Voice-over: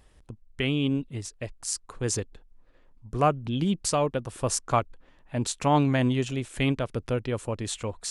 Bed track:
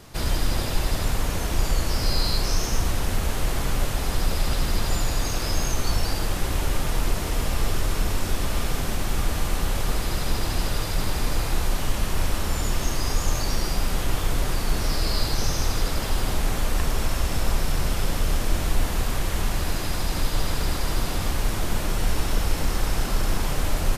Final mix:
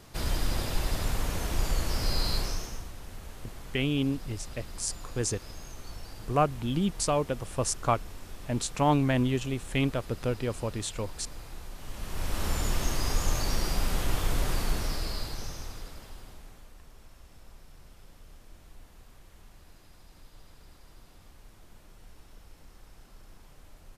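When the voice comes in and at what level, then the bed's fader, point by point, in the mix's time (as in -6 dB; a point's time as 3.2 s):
3.15 s, -2.0 dB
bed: 2.38 s -5.5 dB
2.9 s -19 dB
11.75 s -19 dB
12.45 s -4 dB
14.61 s -4 dB
16.77 s -29 dB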